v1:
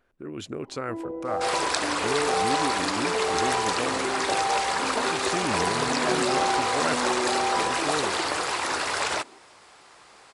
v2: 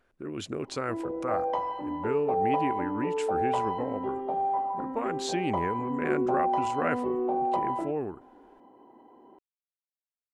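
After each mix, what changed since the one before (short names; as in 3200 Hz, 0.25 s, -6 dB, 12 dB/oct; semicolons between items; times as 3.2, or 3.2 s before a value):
second sound: muted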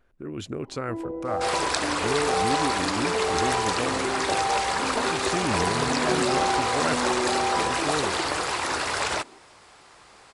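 second sound: unmuted; master: add low shelf 130 Hz +9.5 dB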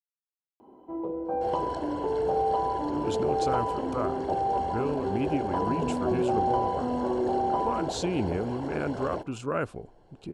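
speech: entry +2.70 s; second sound: add running mean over 36 samples; master: add bell 1900 Hz -14 dB 0.29 oct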